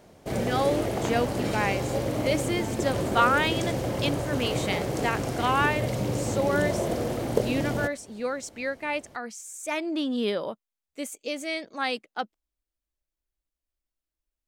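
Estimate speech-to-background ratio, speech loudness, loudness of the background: -0.5 dB, -29.5 LUFS, -29.0 LUFS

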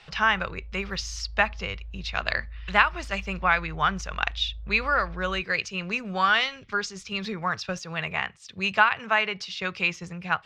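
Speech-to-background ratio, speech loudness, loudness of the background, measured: 15.5 dB, -26.5 LUFS, -42.0 LUFS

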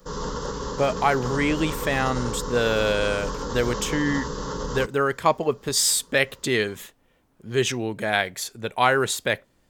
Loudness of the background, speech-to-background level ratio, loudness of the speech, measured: -31.5 LUFS, 7.5 dB, -24.0 LUFS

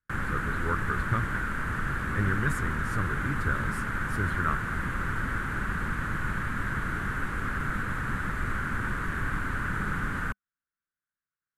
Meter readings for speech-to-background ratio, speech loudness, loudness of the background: -2.0 dB, -33.5 LUFS, -31.5 LUFS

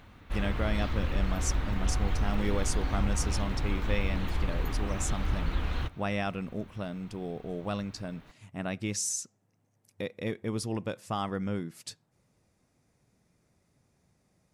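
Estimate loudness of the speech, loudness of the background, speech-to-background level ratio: -35.0 LUFS, -33.5 LUFS, -1.5 dB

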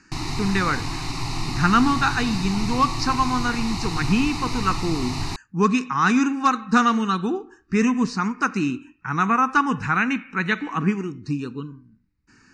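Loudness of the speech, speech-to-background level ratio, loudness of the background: -22.5 LUFS, 6.5 dB, -29.0 LUFS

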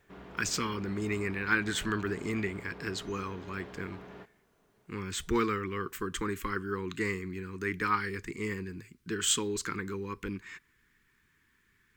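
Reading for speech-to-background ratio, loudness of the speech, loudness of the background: 15.0 dB, -33.5 LUFS, -48.5 LUFS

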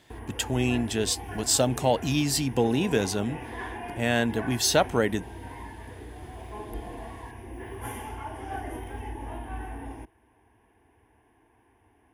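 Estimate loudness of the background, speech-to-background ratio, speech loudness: -39.0 LUFS, 13.0 dB, -26.0 LUFS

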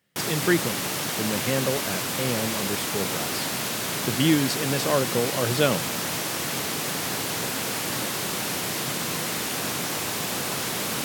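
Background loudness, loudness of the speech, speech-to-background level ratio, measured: -26.5 LUFS, -27.0 LUFS, -0.5 dB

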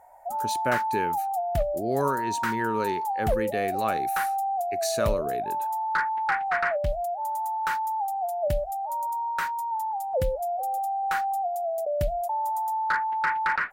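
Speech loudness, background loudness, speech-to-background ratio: -31.0 LUFS, -28.0 LUFS, -3.0 dB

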